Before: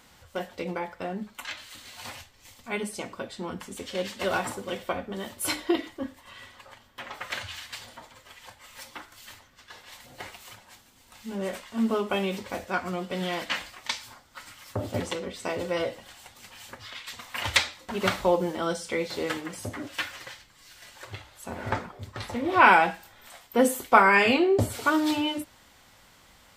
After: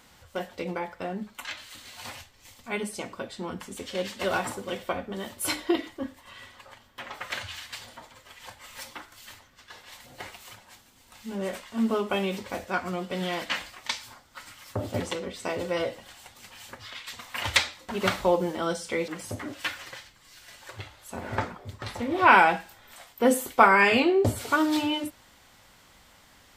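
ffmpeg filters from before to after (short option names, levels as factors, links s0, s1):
-filter_complex "[0:a]asplit=4[s0][s1][s2][s3];[s0]atrim=end=8.402[s4];[s1]atrim=start=8.398:end=8.932,asetpts=PTS-STARTPTS,volume=1.41[s5];[s2]atrim=start=8.928:end=19.082[s6];[s3]atrim=start=19.418[s7];[s4][s5]acrossfade=d=0.004:c1=hsin:c2=hsin[s8];[s8][s6]acrossfade=d=0.004:c1=hsin:c2=hsin[s9];[s9][s7]acrossfade=d=0.004:c1=hsin:c2=hsin"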